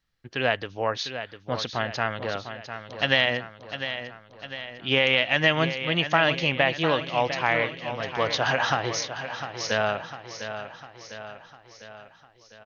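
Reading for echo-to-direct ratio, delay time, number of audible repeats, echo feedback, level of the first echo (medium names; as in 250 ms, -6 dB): -8.5 dB, 702 ms, 5, 55%, -10.0 dB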